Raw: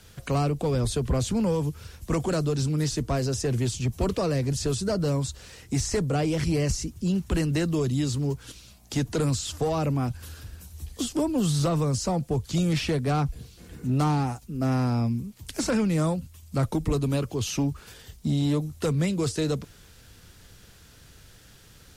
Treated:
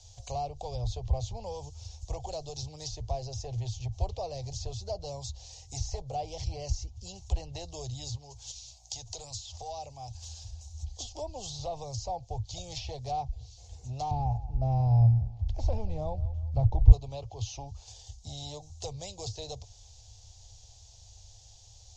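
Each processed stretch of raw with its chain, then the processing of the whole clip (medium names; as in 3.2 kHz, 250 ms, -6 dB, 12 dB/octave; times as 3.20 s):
8.15–10.51 s: tilt shelf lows -3.5 dB, about 830 Hz + compression 2.5:1, threshold -32 dBFS
14.11–16.92 s: RIAA curve playback + feedback delay 183 ms, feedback 37%, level -18 dB
whole clip: FFT filter 110 Hz 0 dB, 160 Hz -27 dB, 280 Hz -29 dB, 790 Hz +2 dB, 1.4 kHz -29 dB, 3.7 kHz -3 dB, 6.8 kHz +6 dB, 10 kHz -26 dB; low-pass that closes with the level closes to 2.9 kHz, closed at -30 dBFS; dynamic bell 1.5 kHz, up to -6 dB, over -54 dBFS, Q 1.3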